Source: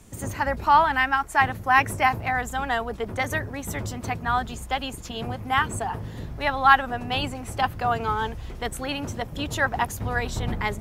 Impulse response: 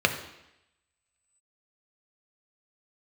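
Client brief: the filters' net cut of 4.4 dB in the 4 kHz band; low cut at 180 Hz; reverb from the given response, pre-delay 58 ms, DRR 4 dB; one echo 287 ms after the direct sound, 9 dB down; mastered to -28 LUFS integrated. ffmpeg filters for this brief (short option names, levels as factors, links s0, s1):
-filter_complex "[0:a]highpass=180,equalizer=f=4000:t=o:g=-6.5,aecho=1:1:287:0.355,asplit=2[s0][s1];[1:a]atrim=start_sample=2205,adelay=58[s2];[s1][s2]afir=irnorm=-1:irlink=0,volume=0.112[s3];[s0][s3]amix=inputs=2:normalize=0,volume=0.668"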